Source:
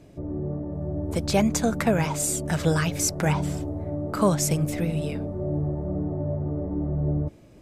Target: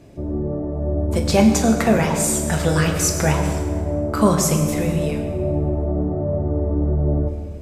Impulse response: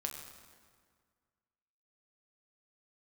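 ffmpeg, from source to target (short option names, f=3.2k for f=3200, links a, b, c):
-filter_complex "[1:a]atrim=start_sample=2205[a];[0:a][a]afir=irnorm=-1:irlink=0,volume=5.5dB"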